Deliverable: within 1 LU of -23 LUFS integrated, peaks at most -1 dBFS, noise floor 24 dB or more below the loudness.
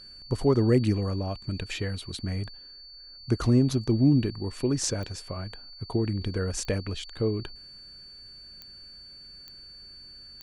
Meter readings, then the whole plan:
clicks found 5; steady tone 4.5 kHz; tone level -45 dBFS; loudness -27.5 LUFS; peak level -10.0 dBFS; loudness target -23.0 LUFS
-> de-click; band-stop 4.5 kHz, Q 30; trim +4.5 dB

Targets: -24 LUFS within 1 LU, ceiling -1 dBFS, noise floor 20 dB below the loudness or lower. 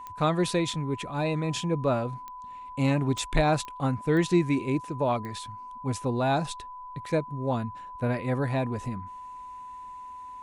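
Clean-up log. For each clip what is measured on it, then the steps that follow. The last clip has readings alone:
clicks found 6; steady tone 1 kHz; tone level -39 dBFS; loudness -28.0 LUFS; peak level -10.0 dBFS; loudness target -24.0 LUFS
-> de-click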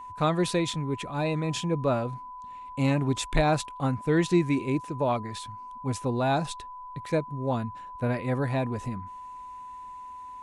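clicks found 0; steady tone 1 kHz; tone level -39 dBFS
-> band-stop 1 kHz, Q 30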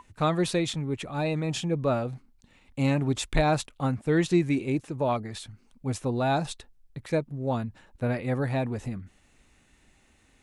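steady tone not found; loudness -28.5 LUFS; peak level -10.0 dBFS; loudness target -24.0 LUFS
-> trim +4.5 dB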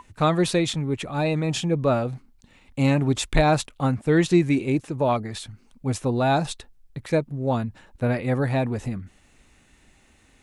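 loudness -24.0 LUFS; peak level -5.5 dBFS; noise floor -58 dBFS

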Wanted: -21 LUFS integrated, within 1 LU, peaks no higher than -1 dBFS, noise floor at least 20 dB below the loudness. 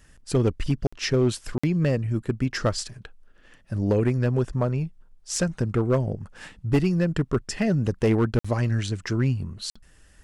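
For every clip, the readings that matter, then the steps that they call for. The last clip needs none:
clipped samples 0.9%; clipping level -14.5 dBFS; dropouts 4; longest dropout 55 ms; loudness -25.5 LUFS; peak level -14.5 dBFS; loudness target -21.0 LUFS
-> clip repair -14.5 dBFS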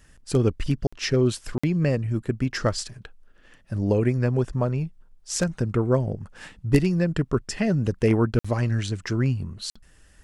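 clipped samples 0.0%; dropouts 4; longest dropout 55 ms
-> interpolate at 0.87/1.58/8.39/9.70 s, 55 ms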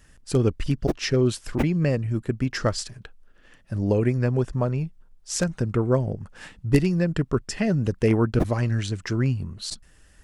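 dropouts 0; loudness -25.0 LUFS; peak level -5.5 dBFS; loudness target -21.0 LUFS
-> trim +4 dB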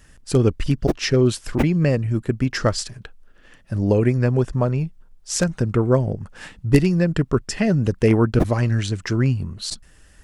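loudness -21.0 LUFS; peak level -1.5 dBFS; noise floor -51 dBFS

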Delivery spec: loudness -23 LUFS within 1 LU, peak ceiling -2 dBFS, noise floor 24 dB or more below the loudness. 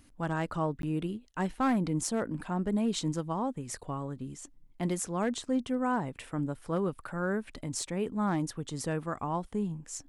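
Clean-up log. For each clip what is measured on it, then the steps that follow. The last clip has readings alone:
clipped samples 0.3%; clipping level -21.5 dBFS; dropouts 1; longest dropout 12 ms; loudness -33.0 LUFS; peak level -21.5 dBFS; loudness target -23.0 LUFS
-> clip repair -21.5 dBFS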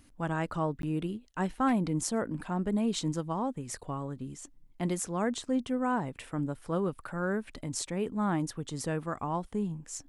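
clipped samples 0.0%; dropouts 1; longest dropout 12 ms
-> interpolate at 0.82 s, 12 ms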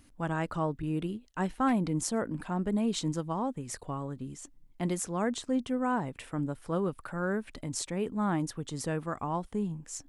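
dropouts 0; loudness -33.0 LUFS; peak level -16.0 dBFS; loudness target -23.0 LUFS
-> trim +10 dB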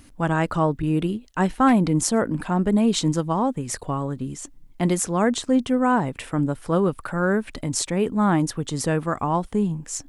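loudness -23.0 LUFS; peak level -6.0 dBFS; noise floor -49 dBFS

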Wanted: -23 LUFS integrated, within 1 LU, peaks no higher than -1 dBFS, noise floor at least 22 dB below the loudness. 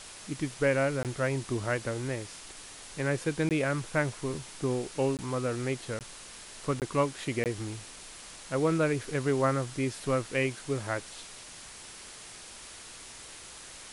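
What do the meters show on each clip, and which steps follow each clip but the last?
dropouts 6; longest dropout 18 ms; noise floor -47 dBFS; noise floor target -53 dBFS; loudness -31.0 LUFS; peak level -13.5 dBFS; loudness target -23.0 LUFS
-> interpolate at 1.03/3.49/5.17/5.99/6.80/7.44 s, 18 ms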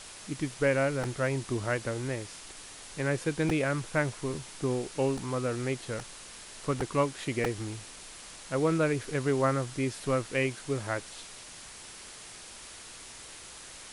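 dropouts 0; noise floor -47 dBFS; noise floor target -53 dBFS
-> noise print and reduce 6 dB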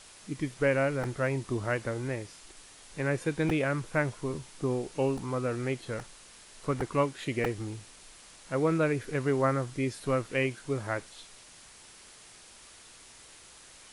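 noise floor -53 dBFS; loudness -31.0 LUFS; peak level -13.5 dBFS; loudness target -23.0 LUFS
-> trim +8 dB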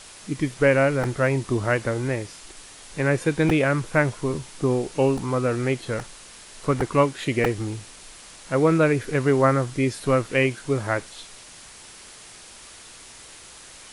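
loudness -23.0 LUFS; peak level -5.5 dBFS; noise floor -45 dBFS

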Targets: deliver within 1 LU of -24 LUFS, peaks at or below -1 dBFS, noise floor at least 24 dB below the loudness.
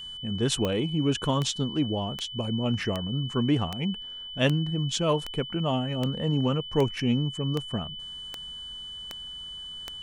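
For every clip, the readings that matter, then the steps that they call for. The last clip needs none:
clicks found 13; steady tone 3 kHz; tone level -37 dBFS; loudness -28.5 LUFS; peak level -10.0 dBFS; loudness target -24.0 LUFS
-> de-click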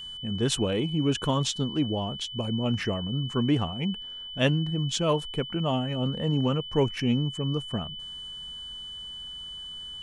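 clicks found 0; steady tone 3 kHz; tone level -37 dBFS
-> band-stop 3 kHz, Q 30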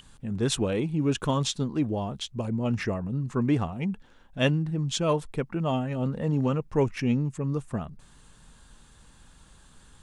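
steady tone not found; loudness -28.0 LUFS; peak level -11.0 dBFS; loudness target -24.0 LUFS
-> trim +4 dB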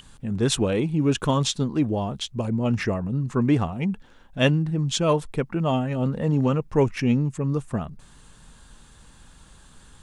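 loudness -24.0 LUFS; peak level -7.0 dBFS; noise floor -51 dBFS

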